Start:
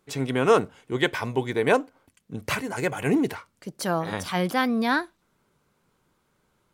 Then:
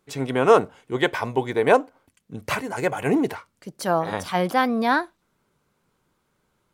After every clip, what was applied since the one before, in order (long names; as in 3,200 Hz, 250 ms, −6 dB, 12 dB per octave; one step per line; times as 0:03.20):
dynamic equaliser 740 Hz, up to +7 dB, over −36 dBFS, Q 0.75
level −1 dB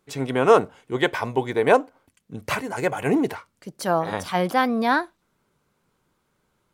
no processing that can be heard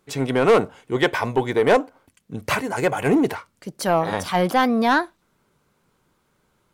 soft clipping −12.5 dBFS, distortion −12 dB
level +4 dB